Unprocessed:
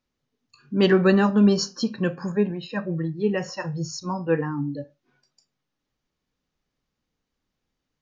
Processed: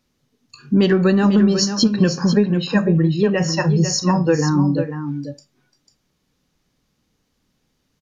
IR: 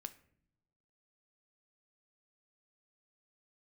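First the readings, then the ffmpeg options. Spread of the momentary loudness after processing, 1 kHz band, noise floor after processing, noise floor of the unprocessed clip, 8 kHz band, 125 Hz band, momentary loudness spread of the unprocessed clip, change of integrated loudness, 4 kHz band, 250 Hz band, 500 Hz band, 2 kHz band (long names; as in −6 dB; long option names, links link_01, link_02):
8 LU, +5.0 dB, −70 dBFS, −82 dBFS, can't be measured, +9.5 dB, 13 LU, +6.0 dB, +8.5 dB, +6.5 dB, +4.0 dB, +4.0 dB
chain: -filter_complex "[0:a]aresample=32000,aresample=44100,equalizer=frequency=170:width_type=o:width=2.5:gain=5.5,acompressor=threshold=-20dB:ratio=16,highshelf=frequency=4200:gain=7.5,asplit=2[link_01][link_02];[link_02]aecho=0:1:496:0.355[link_03];[link_01][link_03]amix=inputs=2:normalize=0,aeval=exprs='0.376*(cos(1*acos(clip(val(0)/0.376,-1,1)))-cos(1*PI/2))+0.00668*(cos(4*acos(clip(val(0)/0.376,-1,1)))-cos(4*PI/2))+0.00531*(cos(6*acos(clip(val(0)/0.376,-1,1)))-cos(6*PI/2))':channel_layout=same,volume=8.5dB"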